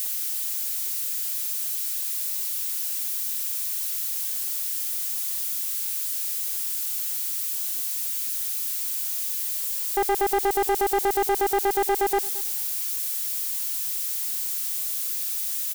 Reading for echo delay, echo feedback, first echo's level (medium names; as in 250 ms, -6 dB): 222 ms, 21%, -20.5 dB